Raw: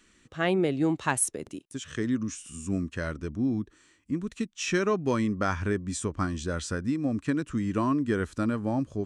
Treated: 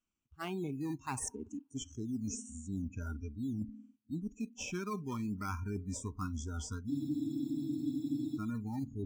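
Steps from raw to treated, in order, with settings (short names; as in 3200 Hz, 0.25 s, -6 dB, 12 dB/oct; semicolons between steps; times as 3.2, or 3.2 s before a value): fixed phaser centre 2700 Hz, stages 8; spring tank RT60 1.6 s, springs 51 ms, chirp 70 ms, DRR 18 dB; in parallel at -7 dB: decimation with a swept rate 16×, swing 60% 1.4 Hz; on the sum: spectral noise reduction 28 dB; reverse; compressor 4:1, threshold -37 dBFS, peak gain reduction 13 dB; reverse; spectral freeze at 6.93, 1.43 s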